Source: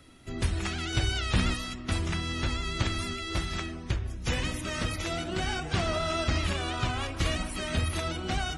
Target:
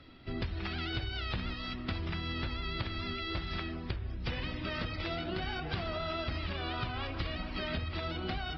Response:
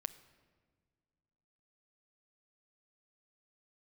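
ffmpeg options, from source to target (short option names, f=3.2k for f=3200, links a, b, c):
-filter_complex "[0:a]aresample=11025,aresample=44100,acompressor=threshold=-32dB:ratio=10,asettb=1/sr,asplit=3[a][b][c];[a]atrim=end=1.314[d];[b]atrim=start=1.31:end=2.28,asetpts=PTS-STARTPTS,afade=t=in:d=0.004:c=qsin,afade=t=out:st=0.966:d=0.004:c=qsin,aeval=exprs='0.1*(cos(1*acos(clip(val(0)/0.1,-1,1)))-cos(1*PI/2))+0.00501*(cos(2*acos(clip(val(0)/0.1,-1,1)))-cos(2*PI/2))':c=same[e];[c]atrim=start=2.276[f];[d][e]acrossfade=d=0.004:c1=hsin:c2=qsin[g];[g][f]acrossfade=d=0.004:c1=qsin:c2=hsin"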